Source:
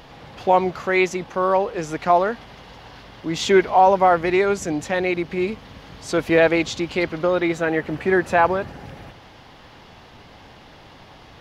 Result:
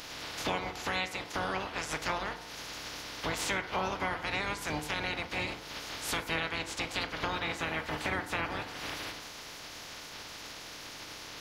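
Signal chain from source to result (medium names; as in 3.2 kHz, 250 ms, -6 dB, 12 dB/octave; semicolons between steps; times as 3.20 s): spectral peaks clipped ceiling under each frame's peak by 28 dB; compression 5:1, threshold -33 dBFS, peak gain reduction 21 dB; FDN reverb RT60 0.94 s, low-frequency decay 0.85×, high-frequency decay 0.35×, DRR 7 dB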